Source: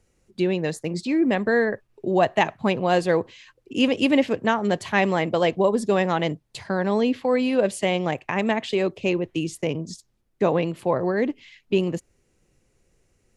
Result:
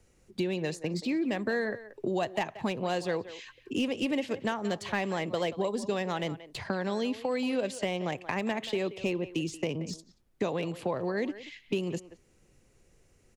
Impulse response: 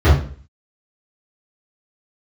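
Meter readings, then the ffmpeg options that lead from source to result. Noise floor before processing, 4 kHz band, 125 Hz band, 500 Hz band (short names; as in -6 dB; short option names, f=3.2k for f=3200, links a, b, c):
-68 dBFS, -6.5 dB, -8.0 dB, -9.5 dB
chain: -filter_complex "[0:a]acrossover=split=3000|7200[a][b][c];[a]acompressor=threshold=-31dB:ratio=4[d];[b]acompressor=threshold=-44dB:ratio=4[e];[c]acompressor=threshold=-60dB:ratio=4[f];[d][e][f]amix=inputs=3:normalize=0,acrossover=split=240|1900[g][h][i];[i]aeval=exprs='clip(val(0),-1,0.0133)':c=same[j];[g][h][j]amix=inputs=3:normalize=0,asplit=2[k][l];[l]adelay=180,highpass=300,lowpass=3.4k,asoftclip=type=hard:threshold=-24.5dB,volume=-14dB[m];[k][m]amix=inputs=2:normalize=0,volume=1.5dB"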